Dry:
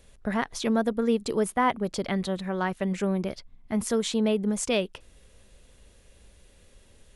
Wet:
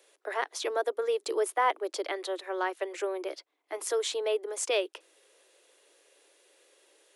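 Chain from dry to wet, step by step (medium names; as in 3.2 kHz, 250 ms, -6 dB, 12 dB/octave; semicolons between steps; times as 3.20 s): steep high-pass 310 Hz 96 dB/octave; trim -1.5 dB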